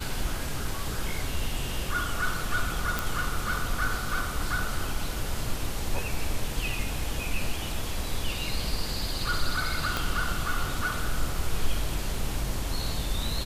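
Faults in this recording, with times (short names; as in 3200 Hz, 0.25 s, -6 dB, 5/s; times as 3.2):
2.99 pop
9.97 pop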